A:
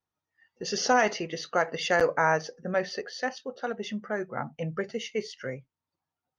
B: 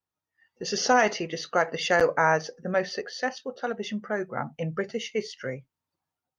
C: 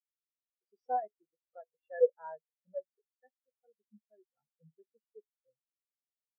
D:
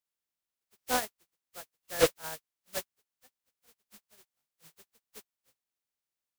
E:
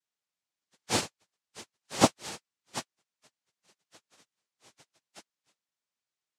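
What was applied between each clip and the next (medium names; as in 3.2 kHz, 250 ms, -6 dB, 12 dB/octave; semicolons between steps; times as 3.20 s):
level rider gain up to 5 dB; trim -3 dB
spectral contrast expander 4:1; trim -5.5 dB
spectral contrast reduction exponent 0.23; slew-rate limiter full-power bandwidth 180 Hz; trim +4.5 dB
noise-vocoded speech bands 2; trim +2 dB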